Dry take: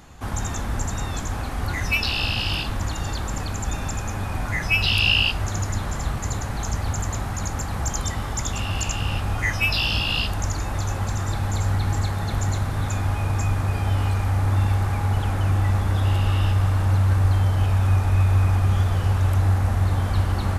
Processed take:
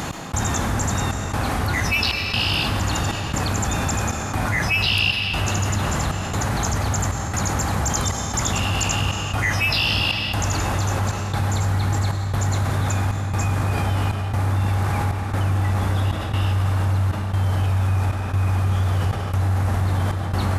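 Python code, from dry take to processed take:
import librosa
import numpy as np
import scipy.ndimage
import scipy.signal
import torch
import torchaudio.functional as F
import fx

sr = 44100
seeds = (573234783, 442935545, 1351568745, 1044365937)

y = scipy.signal.sosfilt(scipy.signal.butter(2, 78.0, 'highpass', fs=sr, output='sos'), x)
y = fx.step_gate(y, sr, bpm=135, pattern='x..xxxxxx', floor_db=-60.0, edge_ms=4.5)
y = fx.rev_freeverb(y, sr, rt60_s=2.9, hf_ratio=0.85, predelay_ms=60, drr_db=12.5)
y = fx.env_flatten(y, sr, amount_pct=70)
y = y * librosa.db_to_amplitude(-2.0)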